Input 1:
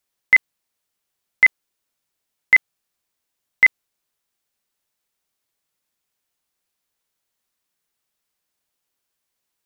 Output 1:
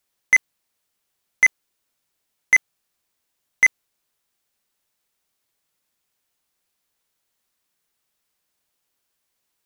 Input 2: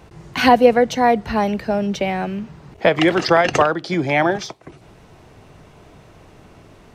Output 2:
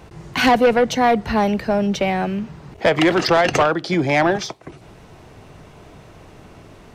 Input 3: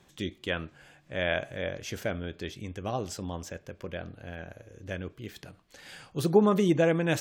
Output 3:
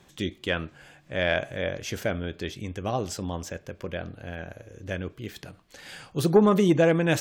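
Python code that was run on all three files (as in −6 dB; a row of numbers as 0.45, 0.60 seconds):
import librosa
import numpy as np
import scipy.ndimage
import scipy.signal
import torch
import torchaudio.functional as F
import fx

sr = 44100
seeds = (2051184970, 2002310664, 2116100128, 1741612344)

y = 10.0 ** (-11.5 / 20.0) * np.tanh(x / 10.0 ** (-11.5 / 20.0))
y = y * 10.0 ** (-9 / 20.0) / np.max(np.abs(y))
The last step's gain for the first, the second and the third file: +3.0, +2.5, +4.0 decibels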